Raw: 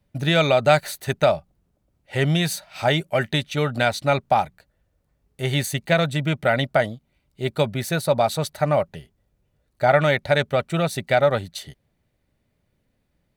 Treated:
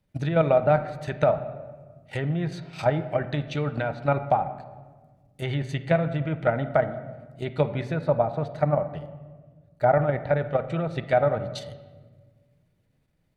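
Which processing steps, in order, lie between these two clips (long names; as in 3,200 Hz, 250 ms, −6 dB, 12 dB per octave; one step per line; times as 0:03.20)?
treble cut that deepens with the level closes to 1,200 Hz, closed at −17 dBFS
0:07.83–0:10.35: high-shelf EQ 3,000 Hz −8 dB
output level in coarse steps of 9 dB
convolution reverb RT60 1.4 s, pre-delay 6 ms, DRR 9.5 dB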